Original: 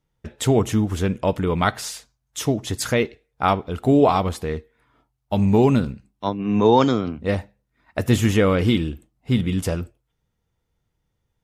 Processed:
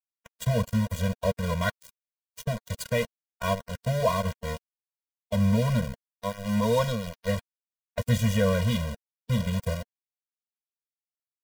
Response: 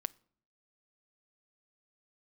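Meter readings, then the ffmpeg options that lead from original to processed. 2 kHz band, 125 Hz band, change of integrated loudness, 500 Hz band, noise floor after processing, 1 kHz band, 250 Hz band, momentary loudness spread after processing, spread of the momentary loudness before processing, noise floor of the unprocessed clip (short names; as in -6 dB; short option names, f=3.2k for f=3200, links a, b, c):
-5.0 dB, -4.0 dB, -7.0 dB, -8.0 dB, under -85 dBFS, -10.0 dB, -9.0 dB, 12 LU, 14 LU, -75 dBFS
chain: -af "equalizer=f=69:w=5:g=11.5,aeval=exprs='val(0)*gte(abs(val(0)),0.0841)':c=same,afftfilt=real='re*eq(mod(floor(b*sr/1024/230),2),0)':imag='im*eq(mod(floor(b*sr/1024/230),2),0)':win_size=1024:overlap=0.75,volume=-4dB"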